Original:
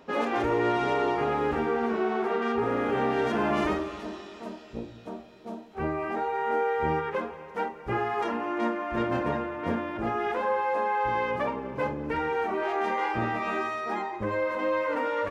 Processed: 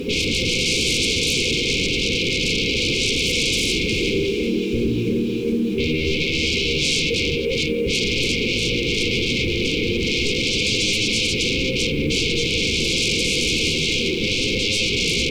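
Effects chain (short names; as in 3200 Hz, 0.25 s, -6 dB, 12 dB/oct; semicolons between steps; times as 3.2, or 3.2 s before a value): high shelf 3800 Hz -7.5 dB; split-band echo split 350 Hz, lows 0.102 s, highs 0.357 s, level -4 dB; sine folder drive 20 dB, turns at -12 dBFS; limiter -19.5 dBFS, peak gain reduction 7.5 dB; brick-wall FIR band-stop 530–2100 Hz; added noise pink -54 dBFS; gain +4.5 dB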